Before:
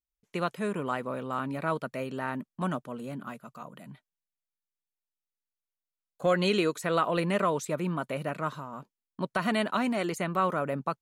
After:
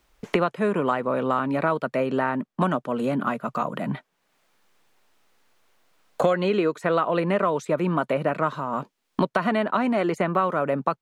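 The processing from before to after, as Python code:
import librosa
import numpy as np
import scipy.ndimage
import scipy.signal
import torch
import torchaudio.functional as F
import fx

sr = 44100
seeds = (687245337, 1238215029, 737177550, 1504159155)

y = fx.lowpass(x, sr, hz=1300.0, slope=6)
y = fx.low_shelf(y, sr, hz=210.0, db=-9.0)
y = fx.band_squash(y, sr, depth_pct=100)
y = y * 10.0 ** (8.5 / 20.0)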